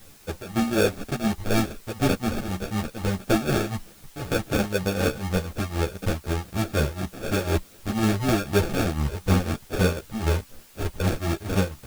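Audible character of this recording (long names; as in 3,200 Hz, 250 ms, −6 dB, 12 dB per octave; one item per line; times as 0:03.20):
aliases and images of a low sample rate 1,000 Hz, jitter 0%
tremolo triangle 4 Hz, depth 85%
a quantiser's noise floor 10 bits, dither triangular
a shimmering, thickened sound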